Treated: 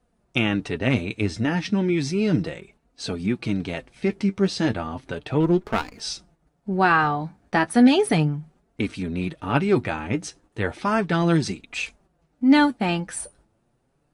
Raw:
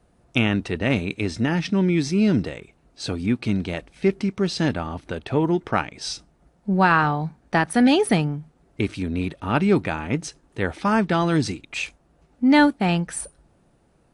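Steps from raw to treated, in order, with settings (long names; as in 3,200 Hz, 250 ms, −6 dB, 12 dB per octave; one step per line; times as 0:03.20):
noise gate −53 dBFS, range −7 dB
flanger 0.34 Hz, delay 3.9 ms, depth 6.5 ms, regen +35%
0:05.40–0:06.00: windowed peak hold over 9 samples
level +3 dB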